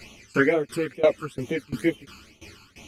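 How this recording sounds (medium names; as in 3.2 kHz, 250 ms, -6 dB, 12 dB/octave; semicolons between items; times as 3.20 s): phasing stages 12, 2.2 Hz, lowest notch 600–1600 Hz; tremolo saw down 2.9 Hz, depth 95%; a shimmering, thickened sound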